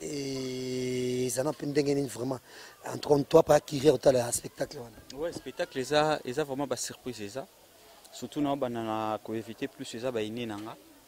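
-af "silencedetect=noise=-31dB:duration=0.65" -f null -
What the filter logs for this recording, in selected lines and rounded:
silence_start: 7.40
silence_end: 8.23 | silence_duration: 0.83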